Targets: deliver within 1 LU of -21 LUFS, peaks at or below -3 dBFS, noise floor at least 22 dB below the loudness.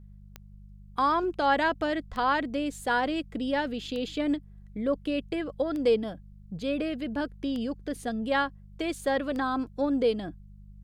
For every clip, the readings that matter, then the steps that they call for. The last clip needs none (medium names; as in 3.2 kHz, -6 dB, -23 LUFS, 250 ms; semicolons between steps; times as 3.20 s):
clicks found 6; hum 50 Hz; highest harmonic 200 Hz; hum level -46 dBFS; loudness -29.0 LUFS; peak level -12.5 dBFS; loudness target -21.0 LUFS
-> de-click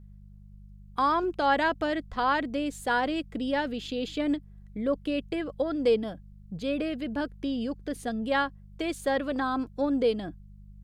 clicks found 0; hum 50 Hz; highest harmonic 200 Hz; hum level -46 dBFS
-> de-hum 50 Hz, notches 4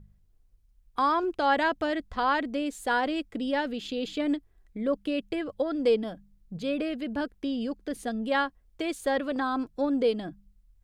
hum not found; loudness -29.0 LUFS; peak level -12.5 dBFS; loudness target -21.0 LUFS
-> trim +8 dB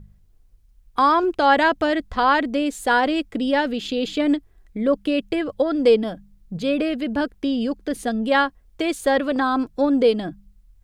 loudness -21.0 LUFS; peak level -4.5 dBFS; noise floor -55 dBFS